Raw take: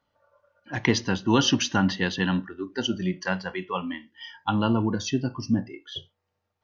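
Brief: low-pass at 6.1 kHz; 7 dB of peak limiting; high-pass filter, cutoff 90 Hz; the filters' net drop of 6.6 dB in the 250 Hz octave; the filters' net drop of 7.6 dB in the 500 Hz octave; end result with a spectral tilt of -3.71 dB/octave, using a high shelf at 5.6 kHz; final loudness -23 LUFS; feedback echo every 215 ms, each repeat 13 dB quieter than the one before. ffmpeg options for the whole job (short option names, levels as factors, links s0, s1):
-af "highpass=90,lowpass=6100,equalizer=f=250:t=o:g=-6.5,equalizer=f=500:t=o:g=-7.5,highshelf=f=5600:g=-8.5,alimiter=limit=0.126:level=0:latency=1,aecho=1:1:215|430|645:0.224|0.0493|0.0108,volume=2.99"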